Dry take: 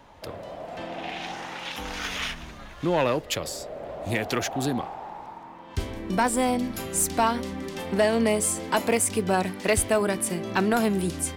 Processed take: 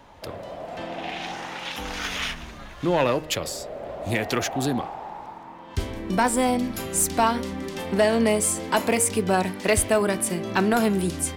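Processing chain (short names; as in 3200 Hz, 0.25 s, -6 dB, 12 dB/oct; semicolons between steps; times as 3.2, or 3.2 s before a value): de-hum 155.1 Hz, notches 18; gain +2 dB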